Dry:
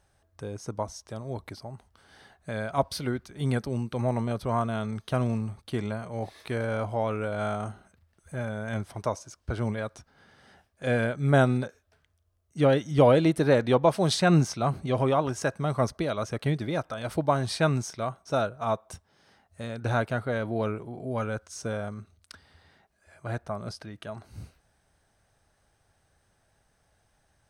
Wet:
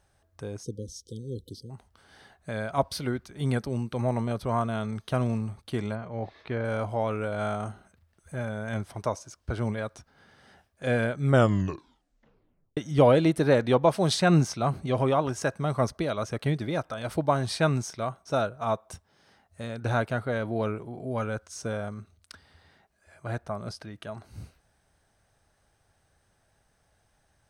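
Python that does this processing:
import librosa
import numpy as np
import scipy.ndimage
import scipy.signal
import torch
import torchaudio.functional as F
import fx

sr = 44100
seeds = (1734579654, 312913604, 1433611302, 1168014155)

y = fx.spec_erase(x, sr, start_s=0.63, length_s=1.07, low_hz=520.0, high_hz=3000.0)
y = fx.air_absorb(y, sr, metres=210.0, at=(5.95, 6.65))
y = fx.edit(y, sr, fx.tape_stop(start_s=11.26, length_s=1.51), tone=tone)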